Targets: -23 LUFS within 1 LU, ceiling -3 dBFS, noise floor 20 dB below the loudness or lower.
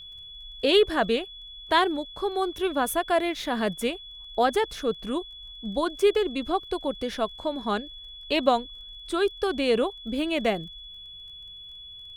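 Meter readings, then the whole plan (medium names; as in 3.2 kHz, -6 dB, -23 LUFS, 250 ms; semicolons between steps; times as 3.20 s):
tick rate 18 per s; steady tone 3.4 kHz; tone level -41 dBFS; loudness -26.5 LUFS; peak level -7.5 dBFS; loudness target -23.0 LUFS
-> de-click; band-stop 3.4 kHz, Q 30; trim +3.5 dB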